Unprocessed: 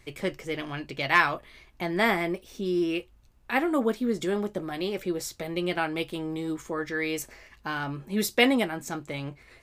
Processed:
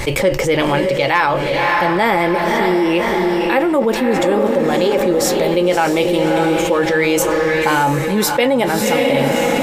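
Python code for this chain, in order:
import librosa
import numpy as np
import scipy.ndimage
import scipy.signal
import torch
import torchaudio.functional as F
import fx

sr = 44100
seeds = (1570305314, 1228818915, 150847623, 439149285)

y = fx.echo_diffused(x, sr, ms=588, feedback_pct=41, wet_db=-6.5)
y = fx.rider(y, sr, range_db=10, speed_s=0.5)
y = fx.small_body(y, sr, hz=(540.0, 860.0), ring_ms=50, db=13)
y = fx.env_flatten(y, sr, amount_pct=70)
y = F.gain(torch.from_numpy(y), 1.5).numpy()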